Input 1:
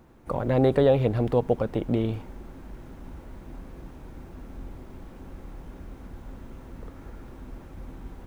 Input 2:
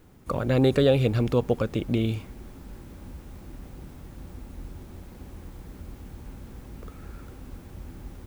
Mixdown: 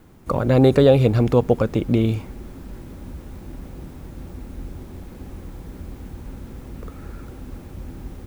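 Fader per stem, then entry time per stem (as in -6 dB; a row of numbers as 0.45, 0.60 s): -2.0, +3.0 dB; 0.00, 0.00 s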